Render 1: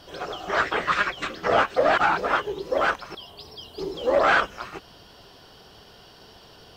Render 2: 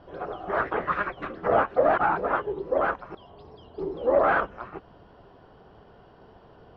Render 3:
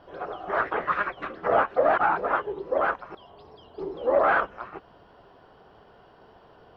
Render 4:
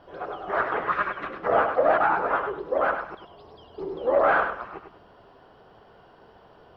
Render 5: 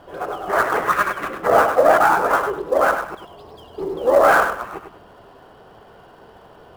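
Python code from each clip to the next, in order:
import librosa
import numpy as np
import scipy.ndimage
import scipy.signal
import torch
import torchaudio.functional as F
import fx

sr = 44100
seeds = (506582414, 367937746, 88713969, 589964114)

y1 = scipy.signal.sosfilt(scipy.signal.butter(2, 1200.0, 'lowpass', fs=sr, output='sos'), x)
y2 = fx.low_shelf(y1, sr, hz=370.0, db=-8.5)
y2 = F.gain(torch.from_numpy(y2), 2.0).numpy()
y3 = fx.echo_feedback(y2, sr, ms=100, feedback_pct=26, wet_db=-7)
y4 = fx.dead_time(y3, sr, dead_ms=0.051)
y4 = F.gain(torch.from_numpy(y4), 7.0).numpy()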